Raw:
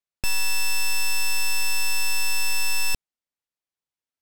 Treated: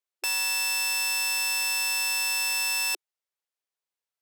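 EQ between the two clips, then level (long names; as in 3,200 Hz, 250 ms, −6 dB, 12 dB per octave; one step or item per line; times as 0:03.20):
linear-phase brick-wall high-pass 350 Hz
0.0 dB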